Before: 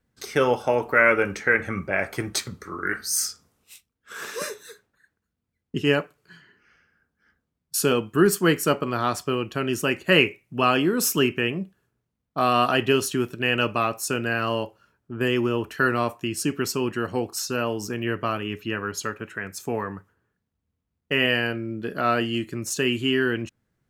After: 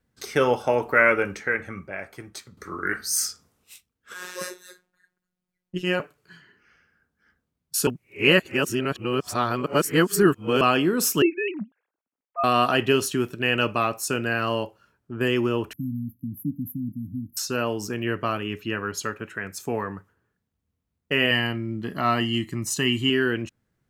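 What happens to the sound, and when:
0:01.01–0:02.57: fade out quadratic, to −13.5 dB
0:04.14–0:06.00: phases set to zero 181 Hz
0:07.87–0:10.61: reverse
0:11.22–0:12.44: three sine waves on the formant tracks
0:15.73–0:17.37: linear-phase brick-wall band-stop 300–11,000 Hz
0:21.31–0:23.10: comb filter 1 ms, depth 62%

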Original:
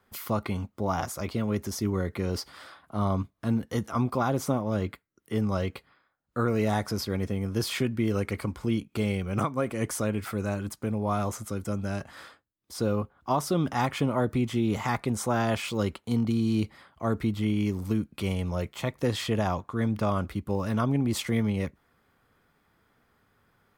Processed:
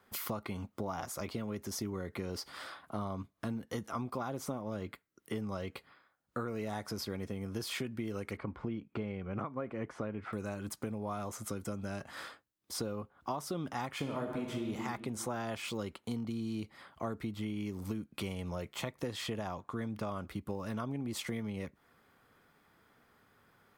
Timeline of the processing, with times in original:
0:08.37–0:10.33: low-pass filter 2,000 Hz
0:13.94–0:14.71: thrown reverb, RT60 1.5 s, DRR 1.5 dB
whole clip: low-shelf EQ 94 Hz −9.5 dB; downward compressor 5 to 1, threshold −37 dBFS; level +1.5 dB

